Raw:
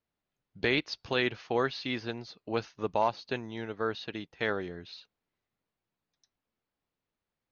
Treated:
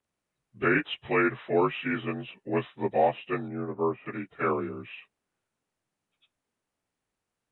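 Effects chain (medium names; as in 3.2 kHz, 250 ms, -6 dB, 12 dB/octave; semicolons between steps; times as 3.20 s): frequency axis rescaled in octaves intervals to 84%; 3.48–4.06 s: low-pass 1.1 kHz 12 dB/octave; trim +5.5 dB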